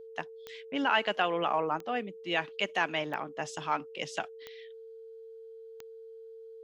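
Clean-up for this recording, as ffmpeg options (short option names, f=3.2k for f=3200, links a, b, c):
-af "adeclick=t=4,bandreject=f=450:w=30"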